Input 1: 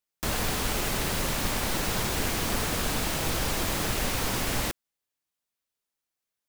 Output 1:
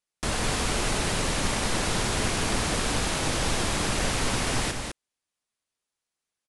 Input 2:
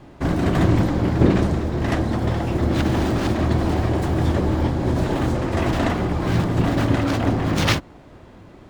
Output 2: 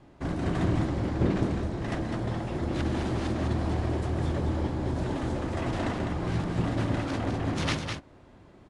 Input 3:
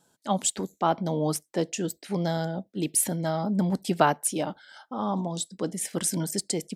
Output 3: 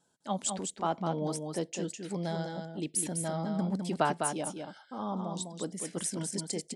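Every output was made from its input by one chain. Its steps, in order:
steep low-pass 11000 Hz 96 dB/oct; on a send: echo 0.204 s -5.5 dB; on the sum: normalise peaks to -12 dBFS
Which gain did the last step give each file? +1.5, -10.0, -7.0 dB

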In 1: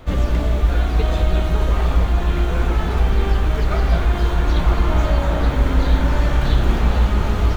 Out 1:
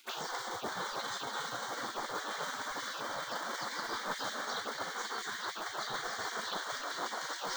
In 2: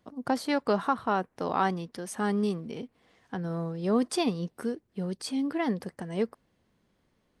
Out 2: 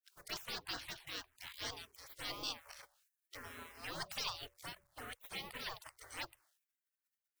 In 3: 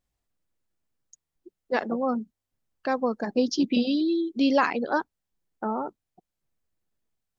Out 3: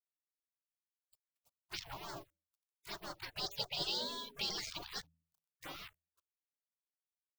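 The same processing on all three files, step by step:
G.711 law mismatch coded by A; reverse; compressor 12:1, threshold -23 dBFS; reverse; envelope phaser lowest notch 280 Hz, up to 2600 Hz, full sweep at -23.5 dBFS; de-hum 82.07 Hz, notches 7; spectral gate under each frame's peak -30 dB weak; gain +10.5 dB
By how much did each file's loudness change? -18.5, -14.5, -14.5 LU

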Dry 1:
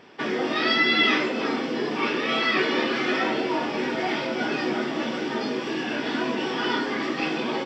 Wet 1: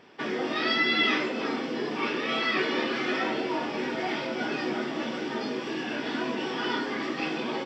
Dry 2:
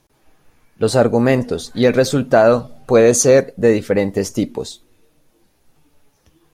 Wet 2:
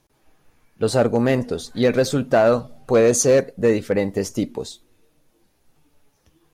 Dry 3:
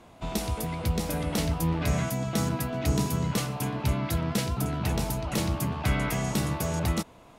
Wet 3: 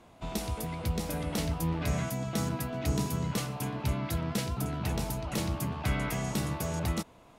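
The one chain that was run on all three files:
hard clip -5 dBFS; gain -4 dB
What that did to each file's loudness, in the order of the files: -4.0, -4.0, -4.0 LU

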